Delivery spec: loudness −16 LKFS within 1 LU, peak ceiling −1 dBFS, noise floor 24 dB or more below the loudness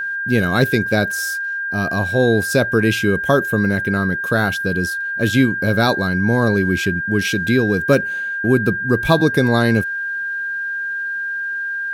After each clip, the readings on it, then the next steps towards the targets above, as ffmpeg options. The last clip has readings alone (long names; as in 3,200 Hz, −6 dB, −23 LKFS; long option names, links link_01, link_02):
interfering tone 1,600 Hz; level of the tone −21 dBFS; integrated loudness −18.0 LKFS; sample peak −1.5 dBFS; target loudness −16.0 LKFS
→ -af "bandreject=frequency=1600:width=30"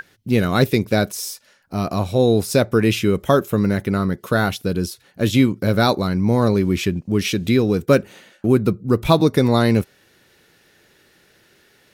interfering tone none found; integrated loudness −19.0 LKFS; sample peak −1.5 dBFS; target loudness −16.0 LKFS
→ -af "volume=3dB,alimiter=limit=-1dB:level=0:latency=1"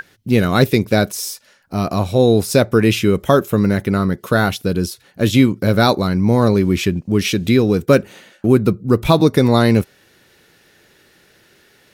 integrated loudness −16.0 LKFS; sample peak −1.0 dBFS; background noise floor −54 dBFS